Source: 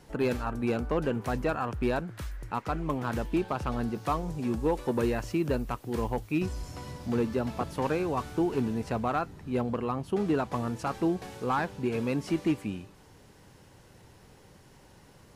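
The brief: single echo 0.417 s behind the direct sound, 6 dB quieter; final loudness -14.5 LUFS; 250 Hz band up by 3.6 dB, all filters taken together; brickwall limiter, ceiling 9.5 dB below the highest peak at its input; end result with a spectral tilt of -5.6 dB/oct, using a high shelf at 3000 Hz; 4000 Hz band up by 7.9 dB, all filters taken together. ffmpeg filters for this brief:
-af "equalizer=f=250:t=o:g=4.5,highshelf=f=3k:g=4,equalizer=f=4k:t=o:g=7,alimiter=limit=-24dB:level=0:latency=1,aecho=1:1:417:0.501,volume=18.5dB"

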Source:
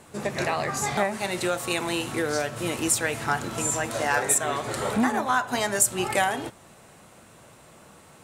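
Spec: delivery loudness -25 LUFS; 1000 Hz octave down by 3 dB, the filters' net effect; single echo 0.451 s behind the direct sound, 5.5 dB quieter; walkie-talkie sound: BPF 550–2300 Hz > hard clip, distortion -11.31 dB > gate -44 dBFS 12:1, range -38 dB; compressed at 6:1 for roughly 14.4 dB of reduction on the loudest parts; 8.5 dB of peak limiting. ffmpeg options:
-af "equalizer=f=1k:t=o:g=-3,acompressor=threshold=-34dB:ratio=6,alimiter=level_in=5.5dB:limit=-24dB:level=0:latency=1,volume=-5.5dB,highpass=550,lowpass=2.3k,aecho=1:1:451:0.531,asoftclip=type=hard:threshold=-40dB,agate=range=-38dB:threshold=-44dB:ratio=12,volume=20dB"

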